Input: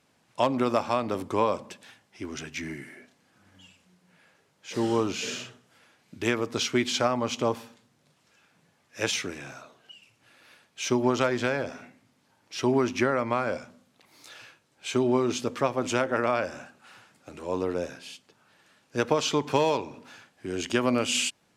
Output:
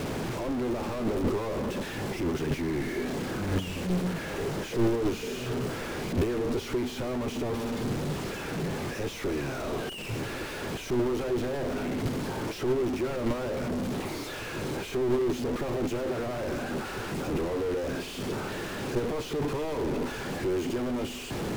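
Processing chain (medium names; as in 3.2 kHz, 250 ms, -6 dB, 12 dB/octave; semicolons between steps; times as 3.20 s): one-bit comparator; tilt EQ -2.5 dB/octave; gate -25 dBFS, range -6 dB; peaking EQ 390 Hz +8.5 dB 0.64 oct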